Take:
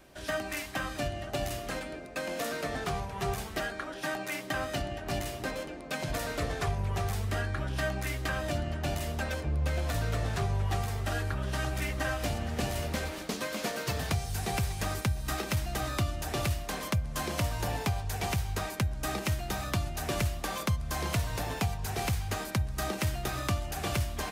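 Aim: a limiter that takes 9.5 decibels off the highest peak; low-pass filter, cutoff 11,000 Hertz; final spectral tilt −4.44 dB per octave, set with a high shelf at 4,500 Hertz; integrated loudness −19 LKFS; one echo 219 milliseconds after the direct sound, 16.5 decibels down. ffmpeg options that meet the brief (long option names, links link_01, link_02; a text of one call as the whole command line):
ffmpeg -i in.wav -af "lowpass=11000,highshelf=frequency=4500:gain=7.5,alimiter=limit=-24dB:level=0:latency=1,aecho=1:1:219:0.15,volume=15dB" out.wav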